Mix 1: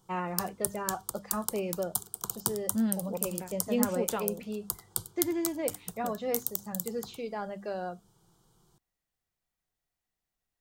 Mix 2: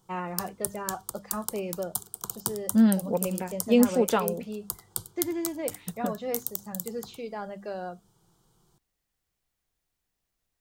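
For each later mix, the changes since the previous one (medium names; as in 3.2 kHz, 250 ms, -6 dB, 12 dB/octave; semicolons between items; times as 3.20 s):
second voice +9.0 dB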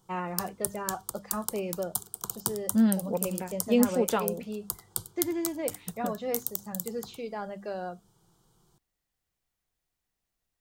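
second voice -3.0 dB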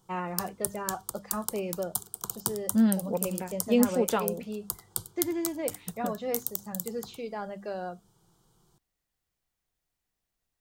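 no change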